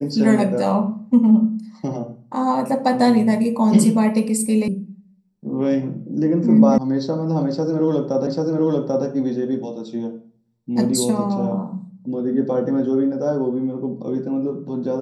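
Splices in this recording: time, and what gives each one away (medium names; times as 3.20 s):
4.68 s: sound stops dead
6.78 s: sound stops dead
8.27 s: repeat of the last 0.79 s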